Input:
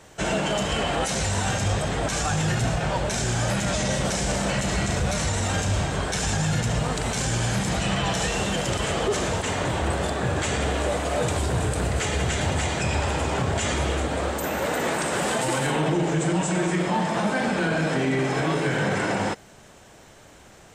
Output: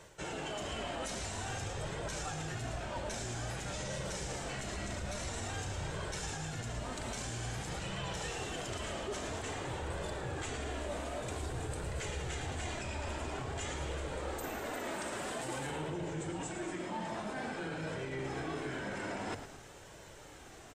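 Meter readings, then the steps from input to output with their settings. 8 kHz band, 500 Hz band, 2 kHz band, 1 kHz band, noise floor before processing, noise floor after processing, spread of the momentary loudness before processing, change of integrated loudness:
-14.0 dB, -14.5 dB, -14.5 dB, -14.0 dB, -49 dBFS, -52 dBFS, 2 LU, -14.5 dB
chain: notches 50/100 Hz; reverse; compressor 5:1, threshold -34 dBFS, peak gain reduction 13 dB; reverse; flange 0.5 Hz, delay 1.9 ms, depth 1.4 ms, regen -40%; frequency-shifting echo 0.11 s, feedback 45%, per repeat -60 Hz, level -10 dB

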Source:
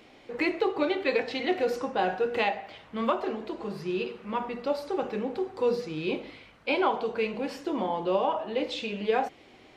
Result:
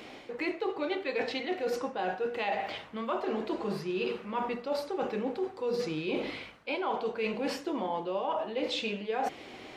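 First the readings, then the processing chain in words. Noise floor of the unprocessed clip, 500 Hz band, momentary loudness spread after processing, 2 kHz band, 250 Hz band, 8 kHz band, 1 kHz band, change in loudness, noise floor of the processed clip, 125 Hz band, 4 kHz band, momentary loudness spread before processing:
-55 dBFS, -4.0 dB, 3 LU, -3.5 dB, -3.5 dB, n/a, -4.0 dB, -3.5 dB, -48 dBFS, -2.5 dB, -1.5 dB, 8 LU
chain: low shelf 110 Hz -7.5 dB; reverse; compressor 10:1, threshold -37 dBFS, peak gain reduction 17 dB; reverse; gain +8 dB

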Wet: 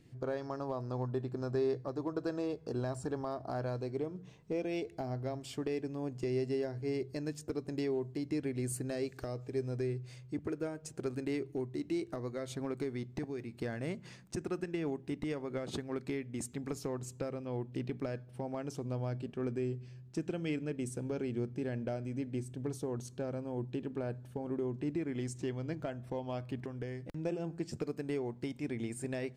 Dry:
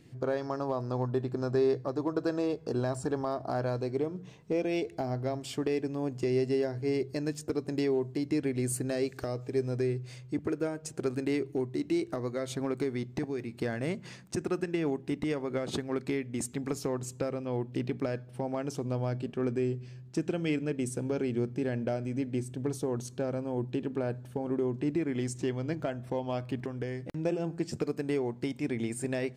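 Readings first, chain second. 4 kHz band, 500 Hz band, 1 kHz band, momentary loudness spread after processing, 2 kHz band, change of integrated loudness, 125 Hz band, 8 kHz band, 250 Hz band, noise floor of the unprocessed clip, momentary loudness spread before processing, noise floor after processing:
-6.0 dB, -6.0 dB, -6.0 dB, 5 LU, -6.0 dB, -5.5 dB, -4.0 dB, -6.0 dB, -5.5 dB, -50 dBFS, 5 LU, -54 dBFS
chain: low shelf 66 Hz +8.5 dB; gain -6 dB

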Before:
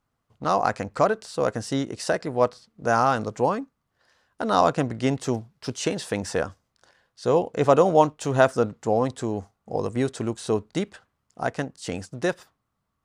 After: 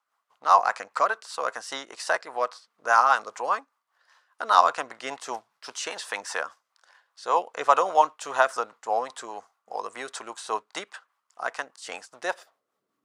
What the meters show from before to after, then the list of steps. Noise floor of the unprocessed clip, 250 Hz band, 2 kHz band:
-78 dBFS, -20.0 dB, +3.0 dB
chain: rotary speaker horn 5 Hz; high-pass sweep 1000 Hz -> 290 Hz, 12.18–13; gain +2.5 dB

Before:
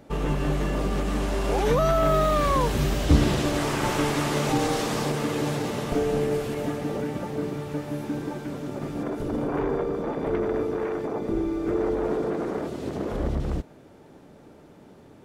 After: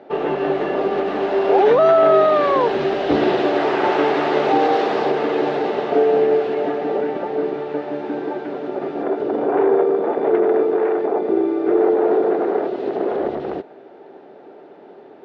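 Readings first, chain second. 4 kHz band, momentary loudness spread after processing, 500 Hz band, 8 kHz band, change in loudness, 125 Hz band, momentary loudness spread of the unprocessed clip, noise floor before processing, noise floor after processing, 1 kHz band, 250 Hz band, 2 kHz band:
+1.0 dB, 11 LU, +10.5 dB, under -15 dB, +8.0 dB, -10.5 dB, 10 LU, -50 dBFS, -43 dBFS, +9.0 dB, +4.5 dB, +6.0 dB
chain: speaker cabinet 380–3500 Hz, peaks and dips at 390 Hz +9 dB, 740 Hz +7 dB, 1100 Hz -4 dB, 2300 Hz -4 dB, 3200 Hz -4 dB; gain +7.5 dB

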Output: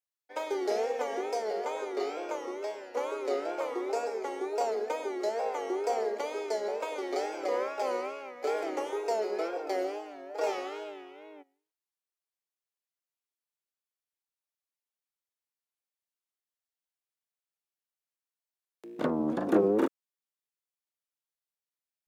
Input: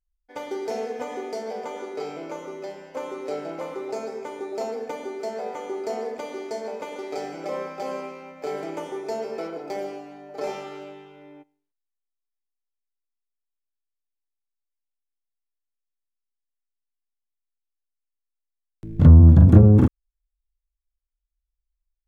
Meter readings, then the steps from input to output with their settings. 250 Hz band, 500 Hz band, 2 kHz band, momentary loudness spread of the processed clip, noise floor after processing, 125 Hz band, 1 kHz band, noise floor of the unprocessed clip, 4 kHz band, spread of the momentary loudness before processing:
-10.0 dB, -0.5 dB, 0.0 dB, 9 LU, under -85 dBFS, under -30 dB, +0.5 dB, -83 dBFS, 0.0 dB, 22 LU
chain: HPF 340 Hz 24 dB/oct; wow and flutter 120 cents

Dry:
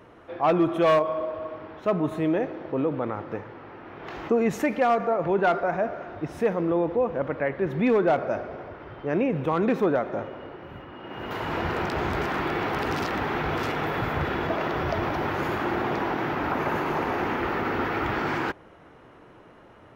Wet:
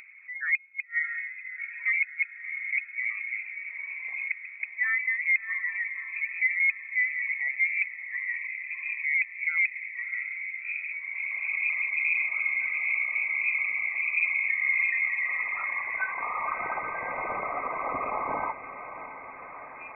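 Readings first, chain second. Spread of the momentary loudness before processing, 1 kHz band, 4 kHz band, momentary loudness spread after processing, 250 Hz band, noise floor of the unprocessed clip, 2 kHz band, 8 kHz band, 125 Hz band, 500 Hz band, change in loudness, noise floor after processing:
15 LU, -8.5 dB, under -30 dB, 10 LU, under -25 dB, -51 dBFS, +8.0 dB, n/a, under -25 dB, under -15 dB, -1.5 dB, -44 dBFS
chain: formant sharpening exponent 2; spectral noise reduction 28 dB; harmonic-percussive split harmonic +6 dB; band-pass sweep 250 Hz -> 1900 Hz, 14.34–16.67; upward compressor, threshold -30 dBFS; flipped gate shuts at -18 dBFS, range -37 dB; resonant low shelf 100 Hz +13.5 dB, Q 1.5; diffused feedback echo 0.666 s, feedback 72%, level -12.5 dB; inverted band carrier 2500 Hz; gain +3 dB

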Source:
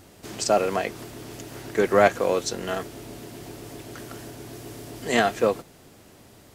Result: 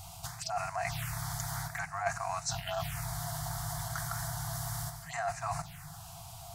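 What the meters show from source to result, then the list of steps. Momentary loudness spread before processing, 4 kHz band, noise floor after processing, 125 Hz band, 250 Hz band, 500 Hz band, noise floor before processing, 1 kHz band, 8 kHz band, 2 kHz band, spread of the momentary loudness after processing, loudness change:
20 LU, -7.0 dB, -48 dBFS, +1.5 dB, -16.5 dB, -17.5 dB, -52 dBFS, -8.0 dB, -2.5 dB, -9.0 dB, 8 LU, -12.5 dB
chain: envelope phaser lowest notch 270 Hz, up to 3300 Hz, full sweep at -22 dBFS; FFT band-reject 180–650 Hz; reverse; compressor 8:1, threshold -39 dBFS, peak gain reduction 21.5 dB; reverse; delay with a stepping band-pass 0.306 s, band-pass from 150 Hz, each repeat 0.7 oct, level -10 dB; in parallel at +0.5 dB: level quantiser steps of 12 dB; on the sum: crackle 30/s -50 dBFS; gain +3.5 dB

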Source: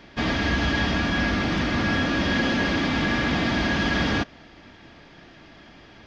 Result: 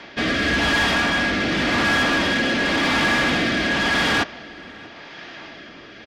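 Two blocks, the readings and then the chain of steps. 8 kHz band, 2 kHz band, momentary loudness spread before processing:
n/a, +6.5 dB, 2 LU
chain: rotary speaker horn 0.9 Hz; overdrive pedal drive 21 dB, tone 4400 Hz, clips at -11.5 dBFS; outdoor echo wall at 110 m, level -21 dB

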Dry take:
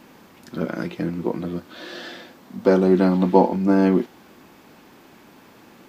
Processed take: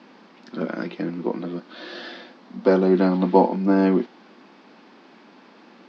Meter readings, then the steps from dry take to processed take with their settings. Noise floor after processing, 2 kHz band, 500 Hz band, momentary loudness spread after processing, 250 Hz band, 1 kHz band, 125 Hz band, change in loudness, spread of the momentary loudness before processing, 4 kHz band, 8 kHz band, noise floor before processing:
-51 dBFS, -0.5 dB, -1.0 dB, 19 LU, -1.5 dB, 0.0 dB, -3.0 dB, -1.0 dB, 19 LU, -0.5 dB, n/a, -50 dBFS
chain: elliptic band-pass 200–4900 Hz, stop band 50 dB

